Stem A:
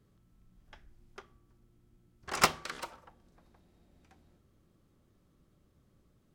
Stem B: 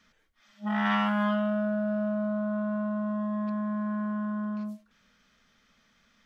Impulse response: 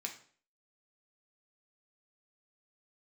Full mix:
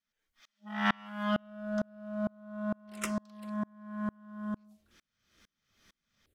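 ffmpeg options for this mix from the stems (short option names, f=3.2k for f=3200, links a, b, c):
-filter_complex "[0:a]dynaudnorm=f=240:g=7:m=13dB,asplit=2[a][b];[b]afreqshift=-2.1[c];[a][c]amix=inputs=2:normalize=1,adelay=600,volume=-10.5dB[d];[1:a]volume=1dB[e];[d][e]amix=inputs=2:normalize=0,highshelf=f=2.8k:g=9.5,aeval=exprs='val(0)*pow(10,-34*if(lt(mod(-2.2*n/s,1),2*abs(-2.2)/1000),1-mod(-2.2*n/s,1)/(2*abs(-2.2)/1000),(mod(-2.2*n/s,1)-2*abs(-2.2)/1000)/(1-2*abs(-2.2)/1000))/20)':c=same"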